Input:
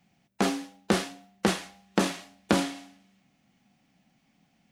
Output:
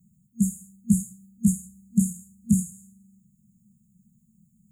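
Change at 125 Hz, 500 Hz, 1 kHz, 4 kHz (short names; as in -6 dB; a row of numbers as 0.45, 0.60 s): +8.5 dB, under -40 dB, under -40 dB, under -40 dB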